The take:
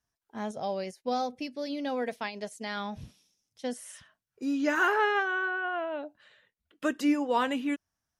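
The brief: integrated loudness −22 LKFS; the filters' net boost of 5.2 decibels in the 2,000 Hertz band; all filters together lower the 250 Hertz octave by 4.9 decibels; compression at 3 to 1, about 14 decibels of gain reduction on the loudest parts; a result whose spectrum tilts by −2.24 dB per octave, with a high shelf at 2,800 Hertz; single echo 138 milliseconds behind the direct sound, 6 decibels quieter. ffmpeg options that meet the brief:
ffmpeg -i in.wav -af "equalizer=frequency=250:width_type=o:gain=-6,equalizer=frequency=2000:width_type=o:gain=5,highshelf=frequency=2800:gain=7.5,acompressor=threshold=-37dB:ratio=3,aecho=1:1:138:0.501,volume=15.5dB" out.wav

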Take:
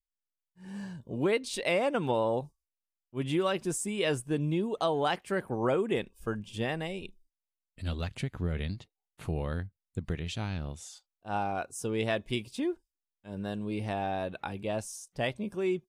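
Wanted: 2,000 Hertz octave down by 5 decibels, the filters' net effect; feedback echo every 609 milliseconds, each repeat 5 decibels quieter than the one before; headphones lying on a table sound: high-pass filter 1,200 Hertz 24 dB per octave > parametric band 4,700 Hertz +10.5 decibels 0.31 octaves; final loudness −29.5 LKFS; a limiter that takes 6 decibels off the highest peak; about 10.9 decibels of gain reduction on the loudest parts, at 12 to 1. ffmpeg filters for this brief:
ffmpeg -i in.wav -af "equalizer=frequency=2000:width_type=o:gain=-6.5,acompressor=threshold=-35dB:ratio=12,alimiter=level_in=7dB:limit=-24dB:level=0:latency=1,volume=-7dB,highpass=frequency=1200:width=0.5412,highpass=frequency=1200:width=1.3066,equalizer=frequency=4700:width_type=o:width=0.31:gain=10.5,aecho=1:1:609|1218|1827|2436|3045|3654|4263:0.562|0.315|0.176|0.0988|0.0553|0.031|0.0173,volume=18dB" out.wav

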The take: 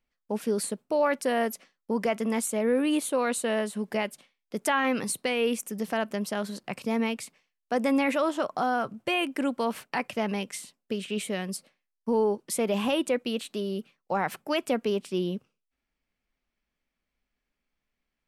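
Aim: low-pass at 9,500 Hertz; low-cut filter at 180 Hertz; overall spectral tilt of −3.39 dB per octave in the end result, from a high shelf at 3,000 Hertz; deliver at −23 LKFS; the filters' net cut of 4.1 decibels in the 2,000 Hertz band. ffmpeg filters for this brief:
ffmpeg -i in.wav -af "highpass=180,lowpass=9500,equalizer=frequency=2000:width_type=o:gain=-7.5,highshelf=frequency=3000:gain=5.5,volume=6.5dB" out.wav

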